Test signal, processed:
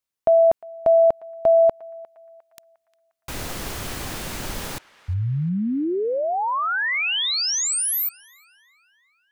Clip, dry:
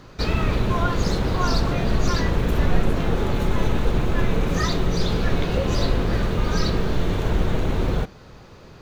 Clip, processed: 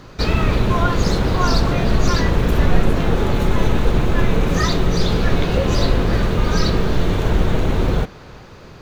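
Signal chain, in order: narrowing echo 0.354 s, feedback 60%, band-pass 1800 Hz, level -18 dB; gain +4.5 dB

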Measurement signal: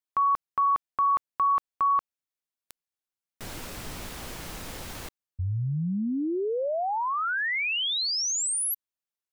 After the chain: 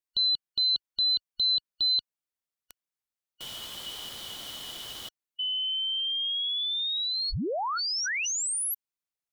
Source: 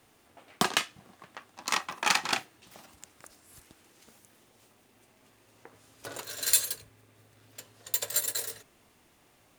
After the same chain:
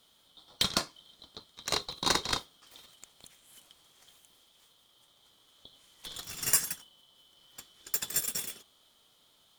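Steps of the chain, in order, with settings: four-band scrambler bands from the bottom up 2413; gain -2 dB

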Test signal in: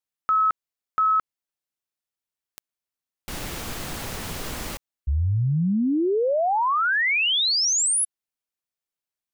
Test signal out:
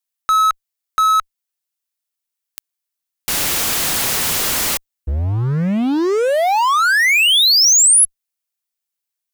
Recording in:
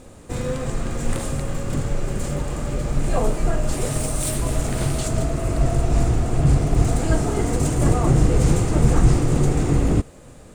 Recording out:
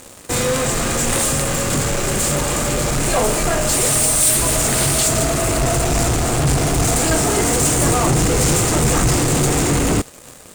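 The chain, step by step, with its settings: tilt +2.5 dB/oct; in parallel at -5.5 dB: fuzz box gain 35 dB, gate -42 dBFS

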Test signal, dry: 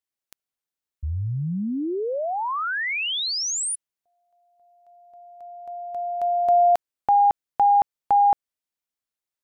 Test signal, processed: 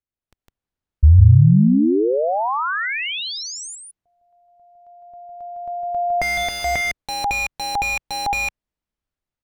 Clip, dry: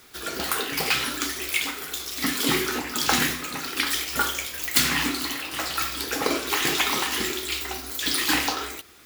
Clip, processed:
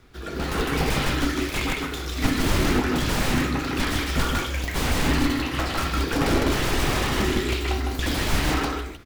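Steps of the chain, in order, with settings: on a send: echo 0.157 s -4 dB; on the sum: wrapped overs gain 18.5 dB; AGC gain up to 7 dB; RIAA curve playback; gain -3.5 dB

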